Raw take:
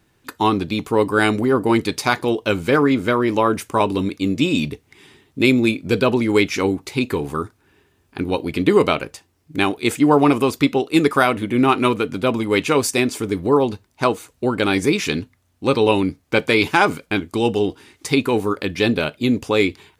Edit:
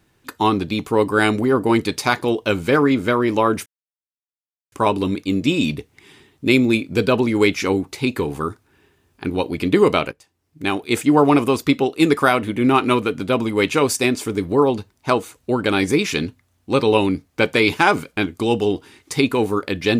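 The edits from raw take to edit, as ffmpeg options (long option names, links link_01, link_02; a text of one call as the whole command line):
ffmpeg -i in.wav -filter_complex "[0:a]asplit=3[link_01][link_02][link_03];[link_01]atrim=end=3.66,asetpts=PTS-STARTPTS,afade=type=out:start_time=3.656:duration=0.004:curve=hsin,apad=pad_dur=1.06[link_04];[link_02]atrim=start=3.66:end=9.06,asetpts=PTS-STARTPTS,afade=type=in:duration=0.004:curve=hsin,afade=type=out:start_time=5.396:duration=0.004:curve=hsin:silence=0.141254[link_05];[link_03]atrim=start=9.06,asetpts=PTS-STARTPTS,afade=type=in:duration=0.85:silence=0.141254[link_06];[link_04][link_05][link_06]concat=n=3:v=0:a=1" out.wav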